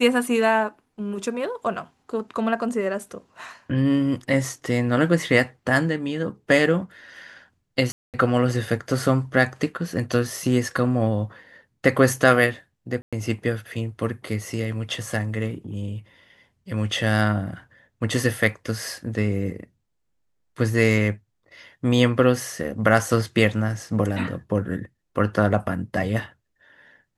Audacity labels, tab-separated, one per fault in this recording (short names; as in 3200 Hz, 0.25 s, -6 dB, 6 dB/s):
7.920000	8.140000	gap 0.218 s
13.020000	13.130000	gap 0.106 s